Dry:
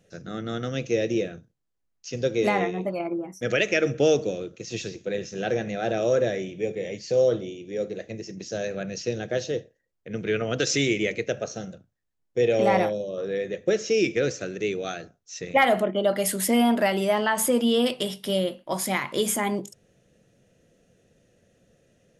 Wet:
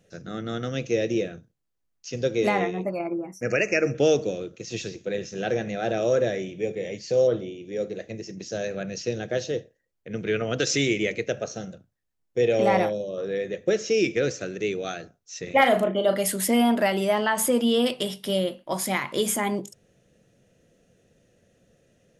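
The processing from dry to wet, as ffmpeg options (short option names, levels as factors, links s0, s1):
-filter_complex "[0:a]asettb=1/sr,asplit=3[s0][s1][s2];[s0]atrim=end=2.834[s3];[s1]atrim=start=2.83:end=3.95,asetpts=PTS-STARTPTS,afade=t=in:d=0.004:c=qsin,afade=t=out:st=1.116:d=0.004:c=qsin,asuperstop=centerf=3500:order=12:qfactor=2.2[s4];[s2]atrim=start=3.946[s5];[s3][s4]acrossfade=d=0.004:c1=hsin:c2=qsin[s6];[s6][s5]acrossfade=d=0.004:c1=qsin:c2=hsin,asettb=1/sr,asplit=3[s7][s8][s9];[s7]atrim=end=7.274[s10];[s8]atrim=start=7.27:end=7.72,asetpts=PTS-STARTPTS,afade=t=in:d=0.004:c=qsin,afade=t=out:st=0.446:d=0.004:c=qsin,acrossover=split=3600[s11][s12];[s12]acompressor=threshold=0.00112:ratio=4:attack=1:release=60[s13];[s11][s13]amix=inputs=2:normalize=0[s14];[s9]atrim=start=7.716[s15];[s10][s14]acrossfade=d=0.004:c1=hsin:c2=qsin[s16];[s16][s15]acrossfade=d=0.004:c1=qsin:c2=hsin,asettb=1/sr,asplit=3[s17][s18][s19];[s17]atrim=end=15.434[s20];[s18]atrim=start=15.43:end=16.19,asetpts=PTS-STARTPTS,afade=t=in:d=0.004:c=qsin,afade=t=out:st=0.756:d=0.004:c=qsin,asplit=2[s21][s22];[s22]adelay=37,volume=0.447[s23];[s21][s23]amix=inputs=2:normalize=0,atrim=end_sample=33516[s24];[s19]atrim=start=16.186[s25];[s20][s24]acrossfade=d=0.004:c1=hsin:c2=qsin[s26];[s26][s25]acrossfade=d=0.004:c1=qsin:c2=hsin"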